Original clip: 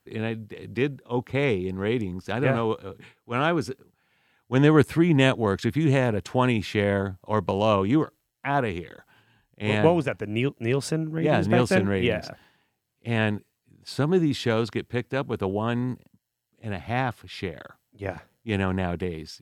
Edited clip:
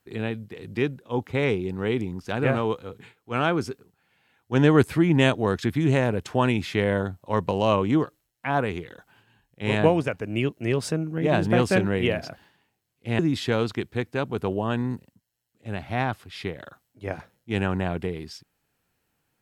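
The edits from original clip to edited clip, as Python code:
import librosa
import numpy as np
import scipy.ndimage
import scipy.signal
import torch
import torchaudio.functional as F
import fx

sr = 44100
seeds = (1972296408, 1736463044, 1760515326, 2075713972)

y = fx.edit(x, sr, fx.cut(start_s=13.19, length_s=0.98), tone=tone)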